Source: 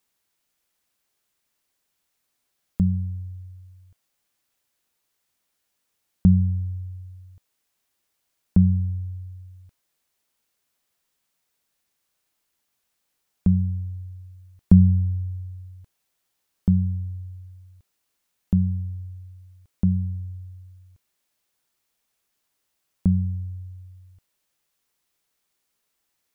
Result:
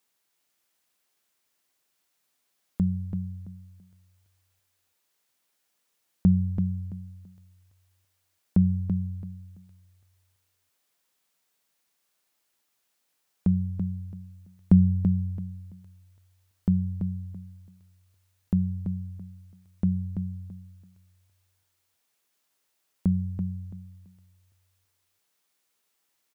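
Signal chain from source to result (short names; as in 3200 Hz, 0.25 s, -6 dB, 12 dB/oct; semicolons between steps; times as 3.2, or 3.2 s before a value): low shelf 110 Hz -11.5 dB; feedback echo 0.334 s, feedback 24%, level -7 dB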